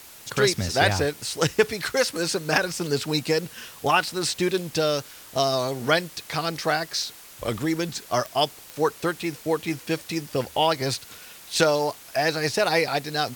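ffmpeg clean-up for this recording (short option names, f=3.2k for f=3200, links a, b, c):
-af "adeclick=t=4,afftdn=nr=24:nf=-45"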